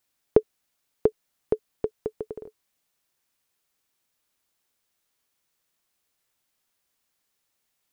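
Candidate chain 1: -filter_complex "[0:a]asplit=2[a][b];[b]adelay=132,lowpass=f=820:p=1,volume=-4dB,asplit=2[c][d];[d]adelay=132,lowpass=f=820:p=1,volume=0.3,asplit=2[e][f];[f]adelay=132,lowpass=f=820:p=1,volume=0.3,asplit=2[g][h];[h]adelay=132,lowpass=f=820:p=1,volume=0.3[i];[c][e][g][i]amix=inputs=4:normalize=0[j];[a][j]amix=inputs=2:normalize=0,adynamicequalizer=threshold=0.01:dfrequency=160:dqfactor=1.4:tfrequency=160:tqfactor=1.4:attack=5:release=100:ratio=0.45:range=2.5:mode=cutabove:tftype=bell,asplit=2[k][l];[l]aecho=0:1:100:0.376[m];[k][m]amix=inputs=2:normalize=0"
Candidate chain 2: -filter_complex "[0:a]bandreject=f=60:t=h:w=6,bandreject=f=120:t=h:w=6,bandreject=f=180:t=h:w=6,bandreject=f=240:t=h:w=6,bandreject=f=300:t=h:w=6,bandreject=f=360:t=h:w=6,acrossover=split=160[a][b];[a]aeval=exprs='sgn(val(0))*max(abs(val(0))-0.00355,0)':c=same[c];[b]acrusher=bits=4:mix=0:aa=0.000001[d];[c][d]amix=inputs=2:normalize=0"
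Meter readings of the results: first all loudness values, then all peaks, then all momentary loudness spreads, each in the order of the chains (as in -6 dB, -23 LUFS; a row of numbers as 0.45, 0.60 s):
-28.5, -29.5 LUFS; -3.0, -3.0 dBFS; 14, 13 LU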